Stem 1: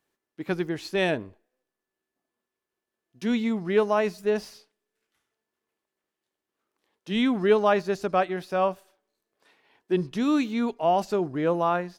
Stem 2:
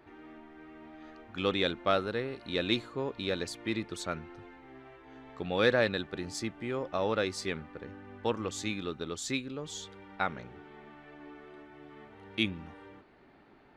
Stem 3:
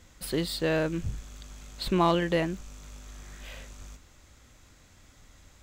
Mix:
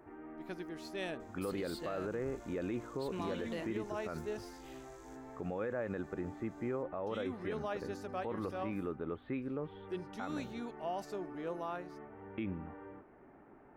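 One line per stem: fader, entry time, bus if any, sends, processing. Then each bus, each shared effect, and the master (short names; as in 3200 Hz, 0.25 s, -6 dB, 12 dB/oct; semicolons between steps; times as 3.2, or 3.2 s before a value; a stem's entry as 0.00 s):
-16.0 dB, 0.00 s, no send, dry
+2.5 dB, 0.00 s, no send, Gaussian blur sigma 5 samples; limiter -25.5 dBFS, peak gain reduction 10.5 dB
-15.0 dB, 1.20 s, no send, dry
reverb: off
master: tone controls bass -3 dB, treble +5 dB; limiter -29 dBFS, peak gain reduction 8.5 dB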